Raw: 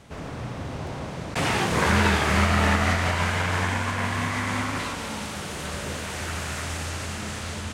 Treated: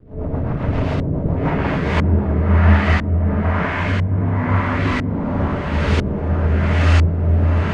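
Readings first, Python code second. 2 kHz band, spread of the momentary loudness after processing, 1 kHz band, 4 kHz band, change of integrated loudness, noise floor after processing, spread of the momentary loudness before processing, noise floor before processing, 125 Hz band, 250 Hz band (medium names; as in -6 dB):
+1.0 dB, 6 LU, +2.0 dB, -3.5 dB, +7.5 dB, -23 dBFS, 13 LU, -35 dBFS, +12.0 dB, +9.0 dB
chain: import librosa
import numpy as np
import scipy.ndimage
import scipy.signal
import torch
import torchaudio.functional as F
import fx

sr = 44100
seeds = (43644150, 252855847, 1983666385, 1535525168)

p1 = fx.rider(x, sr, range_db=5, speed_s=0.5)
p2 = fx.room_shoebox(p1, sr, seeds[0], volume_m3=330.0, walls='mixed', distance_m=5.7)
p3 = fx.dmg_crackle(p2, sr, seeds[1], per_s=470.0, level_db=-17.0)
p4 = fx.rotary_switch(p3, sr, hz=7.5, then_hz=1.2, switch_at_s=1.14)
p5 = p4 + fx.echo_single(p4, sr, ms=571, db=-3.5, dry=0)
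p6 = fx.filter_lfo_lowpass(p5, sr, shape='saw_up', hz=1.0, low_hz=340.0, high_hz=4300.0, q=0.76)
y = p6 * 10.0 ** (-6.0 / 20.0)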